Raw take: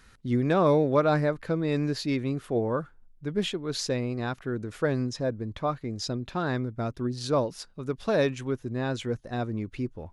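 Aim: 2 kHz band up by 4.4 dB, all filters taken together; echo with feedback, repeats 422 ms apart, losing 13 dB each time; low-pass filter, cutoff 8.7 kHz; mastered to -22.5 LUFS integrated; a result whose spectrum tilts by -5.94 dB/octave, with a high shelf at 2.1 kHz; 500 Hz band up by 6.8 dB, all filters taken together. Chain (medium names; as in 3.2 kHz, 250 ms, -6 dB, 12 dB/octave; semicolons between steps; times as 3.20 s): low-pass 8.7 kHz; peaking EQ 500 Hz +8 dB; peaking EQ 2 kHz +7.5 dB; treble shelf 2.1 kHz -4 dB; feedback delay 422 ms, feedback 22%, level -13 dB; trim +1.5 dB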